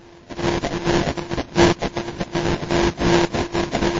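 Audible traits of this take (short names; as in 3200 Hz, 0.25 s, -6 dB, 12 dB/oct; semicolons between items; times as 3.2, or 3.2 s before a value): a buzz of ramps at a fixed pitch in blocks of 128 samples; phasing stages 8, 2.6 Hz, lowest notch 420–1300 Hz; aliases and images of a low sample rate 1300 Hz, jitter 20%; WMA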